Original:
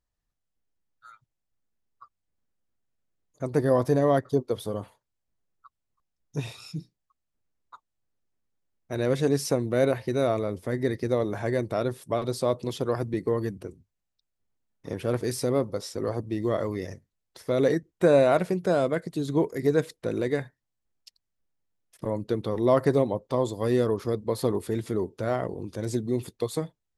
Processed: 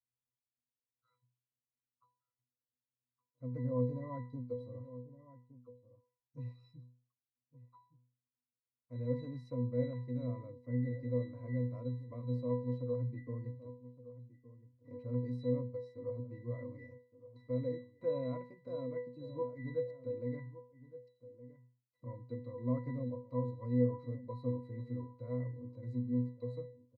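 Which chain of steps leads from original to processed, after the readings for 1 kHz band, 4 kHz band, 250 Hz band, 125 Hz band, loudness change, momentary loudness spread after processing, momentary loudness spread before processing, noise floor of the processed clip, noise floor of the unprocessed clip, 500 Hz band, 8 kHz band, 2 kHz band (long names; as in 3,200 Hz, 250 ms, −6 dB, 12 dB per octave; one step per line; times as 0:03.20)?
−20.0 dB, below −20 dB, −11.0 dB, −6.5 dB, −12.5 dB, 19 LU, 13 LU, below −85 dBFS, −82 dBFS, −15.0 dB, below −35 dB, −21.5 dB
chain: resonances in every octave B, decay 0.39 s
slap from a distant wall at 200 metres, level −15 dB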